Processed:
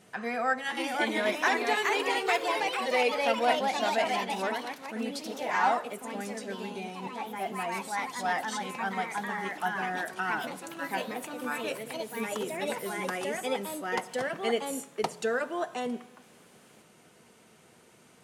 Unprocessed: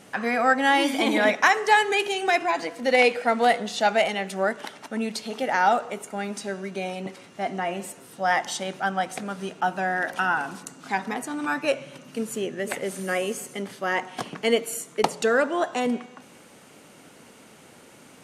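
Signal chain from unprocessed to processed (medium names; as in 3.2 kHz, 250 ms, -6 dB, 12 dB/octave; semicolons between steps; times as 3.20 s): comb of notches 280 Hz; ever faster or slower copies 574 ms, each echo +2 st, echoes 3; trim -7 dB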